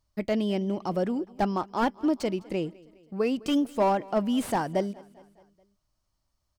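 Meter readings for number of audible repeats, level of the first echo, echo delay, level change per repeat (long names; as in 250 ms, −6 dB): 3, −23.0 dB, 207 ms, −5.0 dB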